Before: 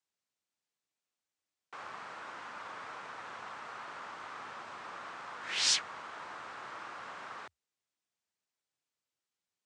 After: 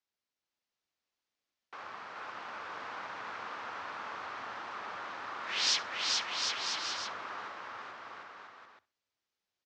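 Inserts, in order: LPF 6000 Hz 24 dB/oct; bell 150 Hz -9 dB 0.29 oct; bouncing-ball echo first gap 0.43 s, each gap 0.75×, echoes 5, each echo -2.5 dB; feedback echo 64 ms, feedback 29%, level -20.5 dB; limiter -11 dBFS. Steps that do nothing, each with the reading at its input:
limiter -11 dBFS: input peak -16.5 dBFS

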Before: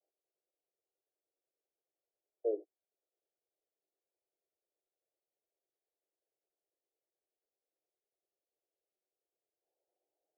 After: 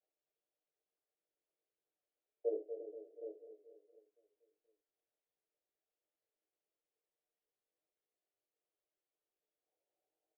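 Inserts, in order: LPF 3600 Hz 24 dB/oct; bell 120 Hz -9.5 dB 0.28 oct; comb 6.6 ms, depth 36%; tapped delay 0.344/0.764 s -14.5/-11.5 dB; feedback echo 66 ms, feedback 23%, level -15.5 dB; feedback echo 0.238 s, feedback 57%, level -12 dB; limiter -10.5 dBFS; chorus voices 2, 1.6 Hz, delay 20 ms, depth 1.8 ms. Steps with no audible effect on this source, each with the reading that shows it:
LPF 3600 Hz: input band ends at 720 Hz; bell 120 Hz: input band starts at 290 Hz; limiter -10.5 dBFS: input peak -21.5 dBFS

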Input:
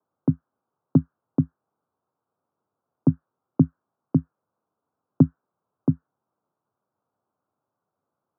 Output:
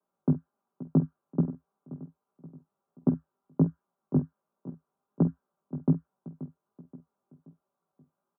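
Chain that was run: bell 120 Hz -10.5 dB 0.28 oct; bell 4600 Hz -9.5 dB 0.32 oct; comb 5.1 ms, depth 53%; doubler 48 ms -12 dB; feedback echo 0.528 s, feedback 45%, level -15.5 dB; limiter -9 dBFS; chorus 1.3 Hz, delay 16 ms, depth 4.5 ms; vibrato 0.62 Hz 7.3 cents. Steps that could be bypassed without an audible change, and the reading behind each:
bell 4600 Hz: input band ends at 600 Hz

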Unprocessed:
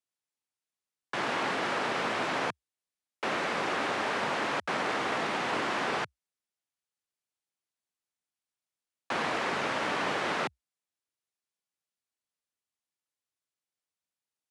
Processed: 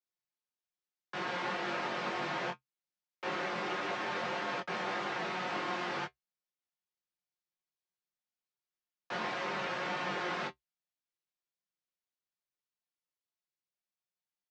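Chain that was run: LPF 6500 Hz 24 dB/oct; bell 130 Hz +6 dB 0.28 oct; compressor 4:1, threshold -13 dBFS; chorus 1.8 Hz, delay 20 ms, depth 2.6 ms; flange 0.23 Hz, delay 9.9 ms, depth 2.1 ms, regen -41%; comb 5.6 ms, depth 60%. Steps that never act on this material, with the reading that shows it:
compressor, threshold -13 dBFS: input peak -18.0 dBFS

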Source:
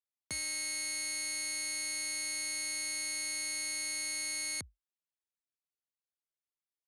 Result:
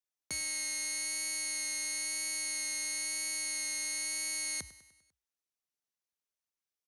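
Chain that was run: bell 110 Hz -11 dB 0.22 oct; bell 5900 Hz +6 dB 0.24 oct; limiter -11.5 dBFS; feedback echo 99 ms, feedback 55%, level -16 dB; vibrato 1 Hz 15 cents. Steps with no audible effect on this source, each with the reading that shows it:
limiter -11.5 dBFS: input peak -24.0 dBFS

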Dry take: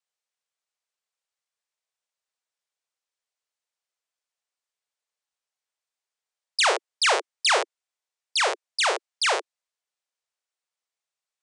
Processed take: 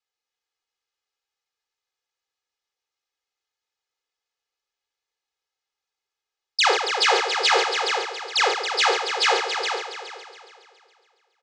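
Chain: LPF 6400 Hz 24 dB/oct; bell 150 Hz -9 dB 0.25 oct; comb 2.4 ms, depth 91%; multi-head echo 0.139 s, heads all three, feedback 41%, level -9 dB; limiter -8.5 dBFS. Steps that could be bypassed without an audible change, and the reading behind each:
bell 150 Hz: input band starts at 300 Hz

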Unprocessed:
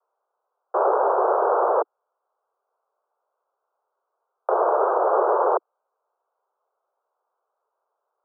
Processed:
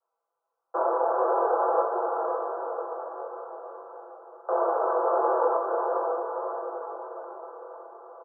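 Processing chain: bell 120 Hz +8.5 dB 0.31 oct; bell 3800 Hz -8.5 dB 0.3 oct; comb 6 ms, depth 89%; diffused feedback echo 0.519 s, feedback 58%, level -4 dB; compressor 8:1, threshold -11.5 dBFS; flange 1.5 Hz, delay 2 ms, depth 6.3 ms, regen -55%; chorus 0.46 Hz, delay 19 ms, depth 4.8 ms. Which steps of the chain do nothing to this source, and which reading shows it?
bell 120 Hz: input band starts at 300 Hz; bell 3800 Hz: input band ends at 1600 Hz

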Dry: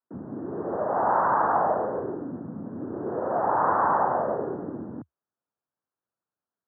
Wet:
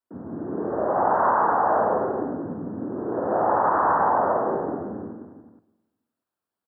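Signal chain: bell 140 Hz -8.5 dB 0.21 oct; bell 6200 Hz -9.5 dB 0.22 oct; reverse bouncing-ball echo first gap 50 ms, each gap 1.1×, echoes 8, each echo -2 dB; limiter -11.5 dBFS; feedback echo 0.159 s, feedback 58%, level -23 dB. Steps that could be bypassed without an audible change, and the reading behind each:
bell 6200 Hz: input band ends at 1900 Hz

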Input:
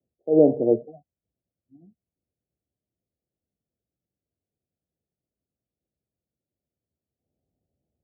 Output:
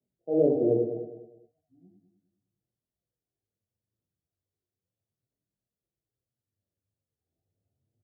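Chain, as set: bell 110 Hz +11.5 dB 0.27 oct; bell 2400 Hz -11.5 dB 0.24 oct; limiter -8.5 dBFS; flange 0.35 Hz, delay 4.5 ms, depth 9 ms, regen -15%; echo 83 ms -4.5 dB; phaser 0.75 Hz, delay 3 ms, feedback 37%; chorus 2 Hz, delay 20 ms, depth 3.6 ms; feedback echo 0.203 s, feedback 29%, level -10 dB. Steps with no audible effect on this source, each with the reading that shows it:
bell 2400 Hz: input band ends at 760 Hz

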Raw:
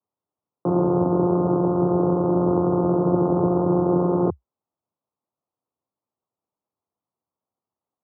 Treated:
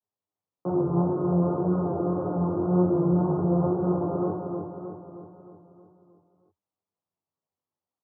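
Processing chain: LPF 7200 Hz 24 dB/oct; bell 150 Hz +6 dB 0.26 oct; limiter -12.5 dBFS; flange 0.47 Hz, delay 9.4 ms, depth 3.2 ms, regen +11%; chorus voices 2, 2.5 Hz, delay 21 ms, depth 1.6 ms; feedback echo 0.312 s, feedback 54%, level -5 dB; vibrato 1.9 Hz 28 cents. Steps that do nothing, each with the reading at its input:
LPF 7200 Hz: input band ends at 1300 Hz

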